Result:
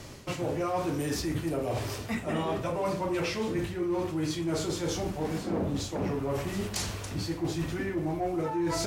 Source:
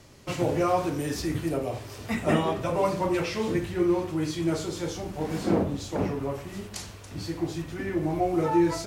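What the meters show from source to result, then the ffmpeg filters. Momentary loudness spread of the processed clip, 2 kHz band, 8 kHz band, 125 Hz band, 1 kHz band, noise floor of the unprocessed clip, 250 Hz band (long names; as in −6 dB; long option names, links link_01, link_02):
3 LU, −2.0 dB, +1.5 dB, −2.0 dB, −4.5 dB, −43 dBFS, −4.0 dB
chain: -af "areverse,acompressor=threshold=-35dB:ratio=6,areverse,asoftclip=type=tanh:threshold=-28.5dB,volume=8dB"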